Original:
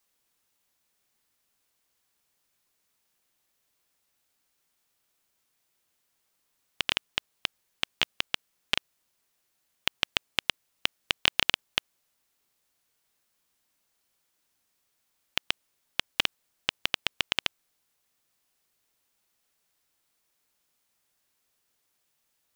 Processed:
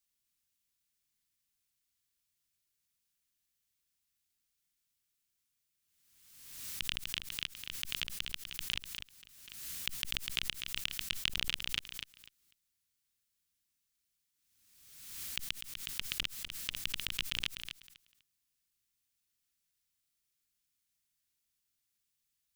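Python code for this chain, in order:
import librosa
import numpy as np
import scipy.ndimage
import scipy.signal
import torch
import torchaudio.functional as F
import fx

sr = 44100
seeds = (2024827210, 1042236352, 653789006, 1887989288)

y = fx.tone_stack(x, sr, knobs='6-0-2')
y = fx.echo_feedback(y, sr, ms=248, feedback_pct=20, wet_db=-8)
y = fx.pre_swell(y, sr, db_per_s=46.0)
y = y * 10.0 ** (7.0 / 20.0)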